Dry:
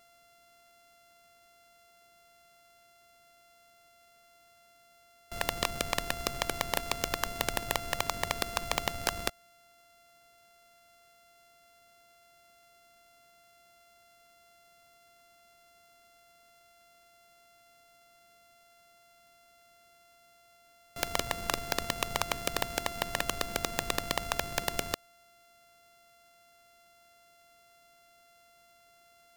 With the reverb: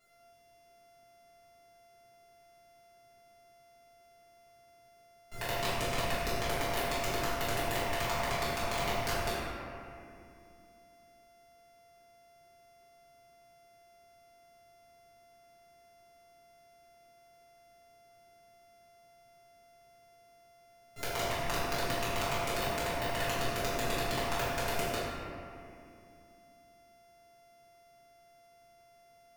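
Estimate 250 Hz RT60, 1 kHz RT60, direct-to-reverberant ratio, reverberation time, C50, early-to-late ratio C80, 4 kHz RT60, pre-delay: 3.6 s, 2.3 s, -13.0 dB, 2.5 s, -3.5 dB, -1.0 dB, 1.4 s, 4 ms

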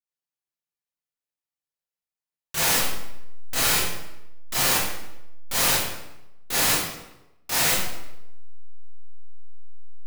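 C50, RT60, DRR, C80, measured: -0.5 dB, 0.90 s, -10.5 dB, 3.5 dB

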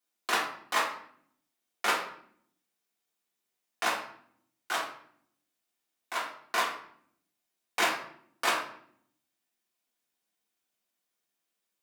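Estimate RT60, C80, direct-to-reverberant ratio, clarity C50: 0.60 s, 10.0 dB, -6.0 dB, 5.5 dB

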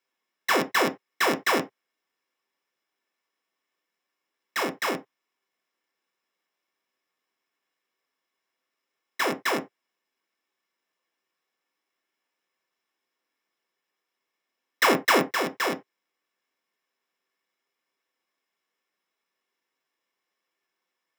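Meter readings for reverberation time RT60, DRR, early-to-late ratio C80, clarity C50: not exponential, 3.5 dB, 28.5 dB, 19.0 dB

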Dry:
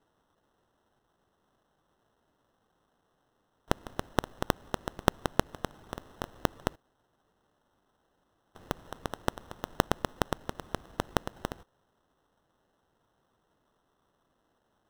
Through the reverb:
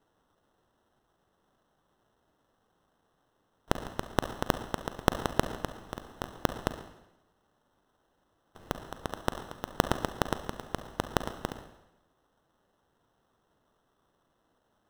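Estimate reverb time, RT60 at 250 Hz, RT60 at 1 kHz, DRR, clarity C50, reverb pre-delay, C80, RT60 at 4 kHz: 0.90 s, 0.90 s, 0.90 s, 8.5 dB, 9.5 dB, 38 ms, 12.0 dB, 0.90 s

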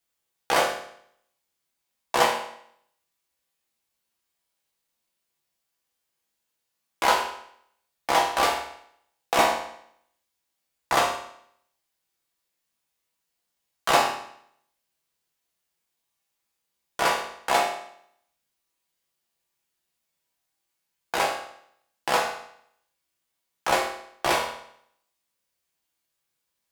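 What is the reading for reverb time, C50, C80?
0.70 s, 5.5 dB, 8.5 dB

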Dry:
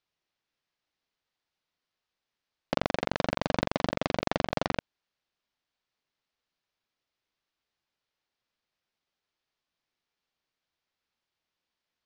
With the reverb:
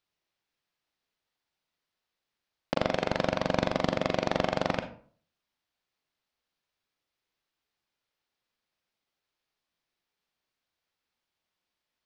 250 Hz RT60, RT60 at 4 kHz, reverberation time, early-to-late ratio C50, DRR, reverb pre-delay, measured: 0.50 s, 0.30 s, 0.50 s, 10.0 dB, 7.0 dB, 34 ms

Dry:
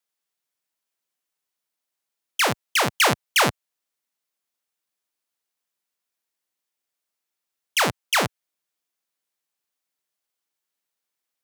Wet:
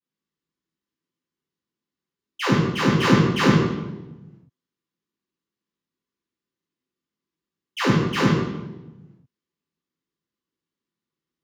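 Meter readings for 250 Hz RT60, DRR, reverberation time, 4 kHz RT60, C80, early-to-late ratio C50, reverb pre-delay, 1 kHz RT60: 1.4 s, -17.0 dB, 1.1 s, 0.80 s, 1.5 dB, -1.0 dB, 3 ms, 0.90 s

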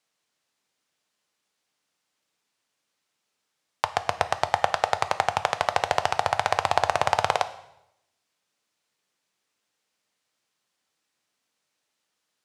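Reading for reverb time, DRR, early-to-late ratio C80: 0.85 s, 10.0 dB, 16.5 dB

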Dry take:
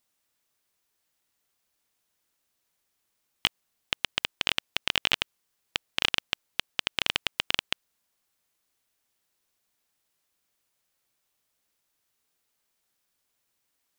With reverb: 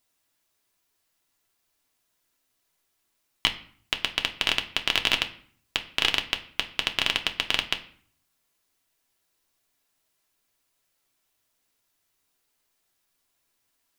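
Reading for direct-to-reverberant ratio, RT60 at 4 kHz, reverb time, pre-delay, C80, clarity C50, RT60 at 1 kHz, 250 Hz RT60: 4.0 dB, 0.40 s, 0.50 s, 3 ms, 18.0 dB, 14.0 dB, 0.55 s, 0.70 s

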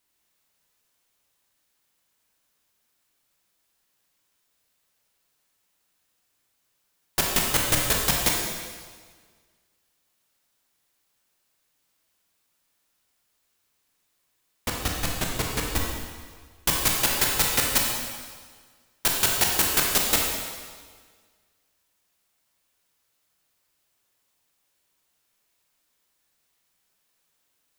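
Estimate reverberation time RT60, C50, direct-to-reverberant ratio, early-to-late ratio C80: 1.7 s, 1.0 dB, -1.0 dB, 3.0 dB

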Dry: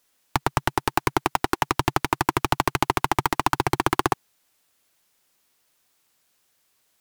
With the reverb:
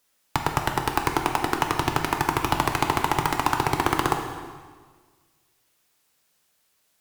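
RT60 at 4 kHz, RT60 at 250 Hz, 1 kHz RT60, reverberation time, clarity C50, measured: 1.4 s, 1.7 s, 1.5 s, 1.5 s, 5.5 dB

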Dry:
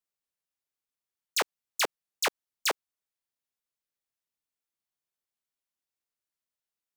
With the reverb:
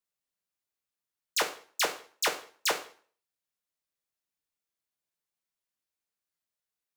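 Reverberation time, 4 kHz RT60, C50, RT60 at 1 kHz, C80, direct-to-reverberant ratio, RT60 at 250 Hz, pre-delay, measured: 0.45 s, 0.45 s, 11.5 dB, 0.45 s, 16.0 dB, 4.0 dB, 0.50 s, 4 ms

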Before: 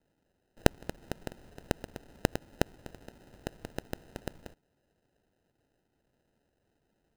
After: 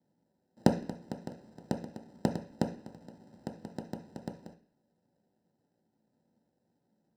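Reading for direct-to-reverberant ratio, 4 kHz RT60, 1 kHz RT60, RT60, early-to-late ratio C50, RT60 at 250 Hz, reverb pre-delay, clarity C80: 2.5 dB, n/a, 0.45 s, 0.45 s, 11.0 dB, 0.55 s, 3 ms, 16.0 dB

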